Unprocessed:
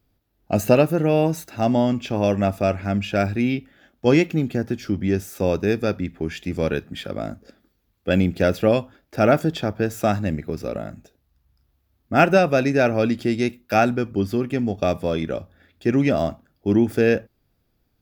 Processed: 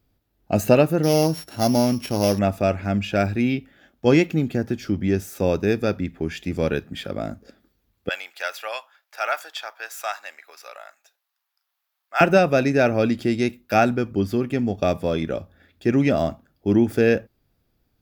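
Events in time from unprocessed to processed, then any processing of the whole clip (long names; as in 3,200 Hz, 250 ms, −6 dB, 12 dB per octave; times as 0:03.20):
0:01.03–0:02.39: samples sorted by size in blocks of 8 samples
0:08.09–0:12.21: high-pass filter 870 Hz 24 dB per octave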